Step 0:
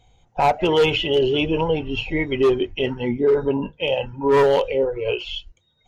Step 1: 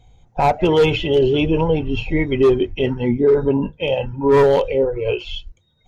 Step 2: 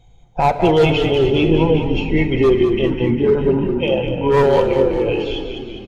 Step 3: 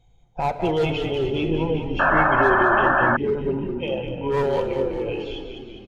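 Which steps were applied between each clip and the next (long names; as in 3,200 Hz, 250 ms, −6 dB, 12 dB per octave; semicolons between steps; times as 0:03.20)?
low-shelf EQ 330 Hz +8 dB; notch filter 2,900 Hz, Q 14
on a send: echo with shifted repeats 202 ms, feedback 62%, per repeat −31 Hz, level −7.5 dB; on the sum: rectangular room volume 4,000 cubic metres, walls mixed, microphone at 0.76 metres
sound drawn into the spectrogram noise, 0:01.99–0:03.17, 530–1,800 Hz −10 dBFS; level −8.5 dB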